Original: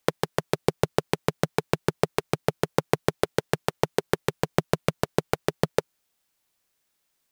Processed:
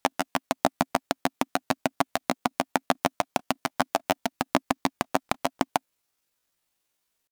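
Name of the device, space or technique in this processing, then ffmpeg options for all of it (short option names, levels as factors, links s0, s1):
chipmunk voice: -af "asetrate=74167,aresample=44100,atempo=0.594604"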